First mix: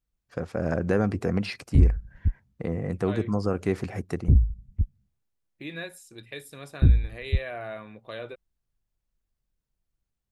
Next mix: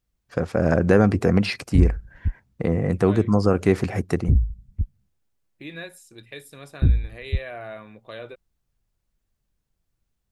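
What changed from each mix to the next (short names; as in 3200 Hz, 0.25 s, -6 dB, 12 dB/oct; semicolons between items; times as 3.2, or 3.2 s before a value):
first voice +7.5 dB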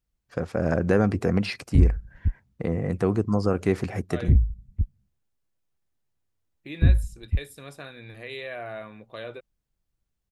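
first voice -4.5 dB; second voice: entry +1.05 s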